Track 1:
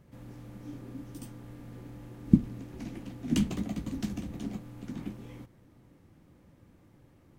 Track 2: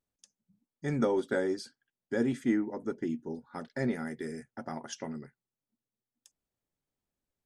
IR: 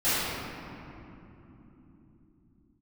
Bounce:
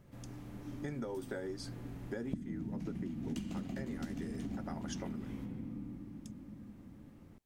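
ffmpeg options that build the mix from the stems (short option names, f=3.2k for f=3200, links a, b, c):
-filter_complex "[0:a]volume=-2dB,asplit=2[a][b];[b]volume=-18.5dB[c];[1:a]acompressor=threshold=-37dB:ratio=2,volume=1.5dB[d];[2:a]atrim=start_sample=2205[e];[c][e]afir=irnorm=-1:irlink=0[f];[a][d][f]amix=inputs=3:normalize=0,acompressor=threshold=-37dB:ratio=6"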